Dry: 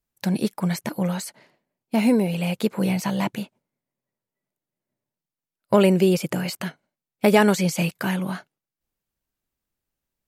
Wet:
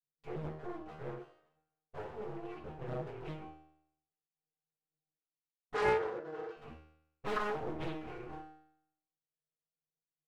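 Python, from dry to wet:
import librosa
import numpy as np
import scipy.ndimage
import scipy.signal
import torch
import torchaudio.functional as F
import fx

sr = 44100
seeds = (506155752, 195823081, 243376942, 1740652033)

p1 = fx.wiener(x, sr, points=41)
p2 = fx.env_flanger(p1, sr, rest_ms=6.6, full_db=-17.5)
p3 = fx.high_shelf(p2, sr, hz=3400.0, db=9.0)
p4 = fx.schmitt(p3, sr, flips_db=-32.5)
p5 = p3 + F.gain(torch.from_numpy(p4), -11.0).numpy()
p6 = fx.env_lowpass_down(p5, sr, base_hz=1500.0, full_db=-17.5)
p7 = fx.octave_resonator(p6, sr, note='D#', decay_s=0.74)
p8 = np.abs(p7)
p9 = fx.cabinet(p8, sr, low_hz=440.0, low_slope=12, high_hz=7100.0, hz=(450.0, 830.0, 1500.0, 2300.0), db=(8, -5, 7, -4), at=(5.74, 6.57))
p10 = fx.rev_fdn(p9, sr, rt60_s=0.42, lf_ratio=0.7, hf_ratio=0.65, size_ms=41.0, drr_db=-6.5)
p11 = fx.doppler_dist(p10, sr, depth_ms=0.67)
y = F.gain(torch.from_numpy(p11), 2.0).numpy()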